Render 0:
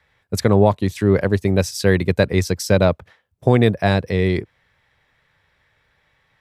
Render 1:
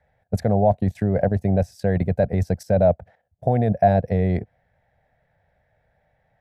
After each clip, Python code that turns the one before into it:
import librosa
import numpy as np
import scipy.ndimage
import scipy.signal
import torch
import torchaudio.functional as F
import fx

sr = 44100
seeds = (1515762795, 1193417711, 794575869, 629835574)

y = fx.high_shelf(x, sr, hz=4800.0, db=8.0)
y = fx.level_steps(y, sr, step_db=11)
y = fx.curve_eq(y, sr, hz=(210.0, 350.0, 710.0, 1100.0, 1600.0, 3200.0, 7300.0), db=(0, -10, 9, -18, -8, -21, -23))
y = y * 10.0 ** (4.5 / 20.0)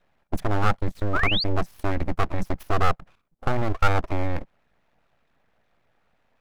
y = np.abs(x)
y = fx.spec_paint(y, sr, seeds[0], shape='rise', start_s=1.13, length_s=0.31, low_hz=1200.0, high_hz=4900.0, level_db=-25.0)
y = fx.dynamic_eq(y, sr, hz=360.0, q=0.88, threshold_db=-37.0, ratio=4.0, max_db=-6)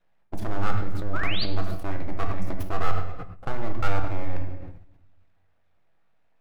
y = fx.echo_feedback(x, sr, ms=105, feedback_pct=45, wet_db=-20)
y = fx.room_shoebox(y, sr, seeds[1], volume_m3=320.0, walls='mixed', distance_m=0.65)
y = fx.sustainer(y, sr, db_per_s=66.0)
y = y * 10.0 ** (-7.5 / 20.0)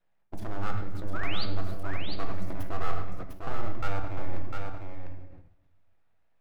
y = x + 10.0 ** (-5.0 / 20.0) * np.pad(x, (int(701 * sr / 1000.0), 0))[:len(x)]
y = y * 10.0 ** (-6.0 / 20.0)